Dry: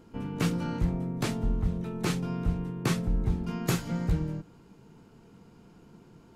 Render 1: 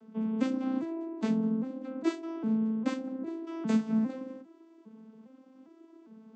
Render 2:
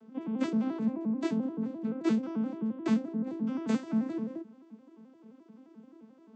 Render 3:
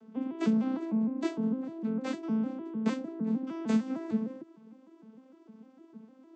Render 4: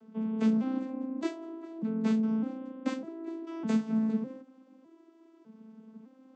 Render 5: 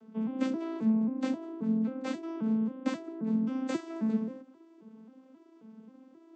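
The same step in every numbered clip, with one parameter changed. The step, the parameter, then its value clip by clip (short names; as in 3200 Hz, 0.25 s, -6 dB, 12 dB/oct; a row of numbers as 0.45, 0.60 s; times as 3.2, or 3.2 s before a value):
arpeggiated vocoder, a note every: 404, 87, 152, 605, 267 ms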